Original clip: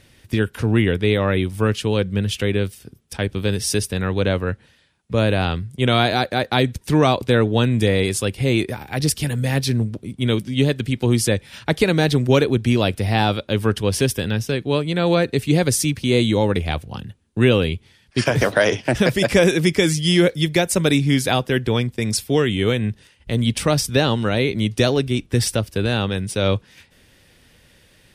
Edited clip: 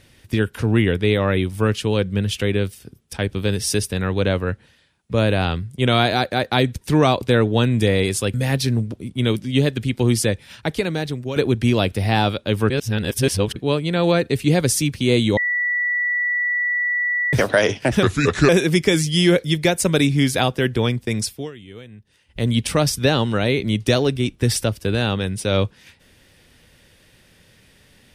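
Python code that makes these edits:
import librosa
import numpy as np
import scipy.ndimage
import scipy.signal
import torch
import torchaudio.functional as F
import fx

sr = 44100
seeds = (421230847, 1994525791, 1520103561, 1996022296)

y = fx.edit(x, sr, fx.cut(start_s=8.34, length_s=1.03),
    fx.fade_out_to(start_s=11.16, length_s=1.23, floor_db=-13.5),
    fx.reverse_span(start_s=13.73, length_s=0.86),
    fx.bleep(start_s=16.4, length_s=1.96, hz=1950.0, db=-18.0),
    fx.speed_span(start_s=19.06, length_s=0.34, speed=0.74),
    fx.fade_down_up(start_s=22.04, length_s=1.29, db=-20.0, fade_s=0.38), tone=tone)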